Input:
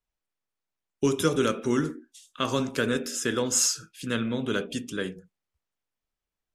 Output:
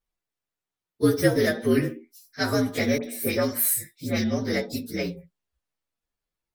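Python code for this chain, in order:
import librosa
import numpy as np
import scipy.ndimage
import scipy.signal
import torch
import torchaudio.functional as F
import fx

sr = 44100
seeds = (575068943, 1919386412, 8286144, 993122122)

y = fx.partial_stretch(x, sr, pct=117)
y = fx.dispersion(y, sr, late='highs', ms=59.0, hz=2200.0, at=(2.98, 4.24))
y = y * librosa.db_to_amplitude(5.5)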